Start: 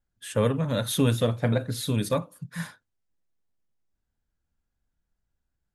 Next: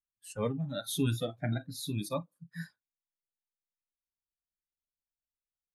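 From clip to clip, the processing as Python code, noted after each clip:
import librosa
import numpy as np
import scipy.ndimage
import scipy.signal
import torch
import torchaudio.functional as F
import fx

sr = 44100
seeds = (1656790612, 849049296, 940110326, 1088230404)

y = fx.noise_reduce_blind(x, sr, reduce_db=21)
y = F.gain(torch.from_numpy(y), -6.5).numpy()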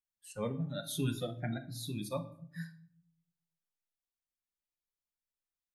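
y = fx.room_shoebox(x, sr, seeds[0], volume_m3=960.0, walls='furnished', distance_m=0.93)
y = F.gain(torch.from_numpy(y), -4.0).numpy()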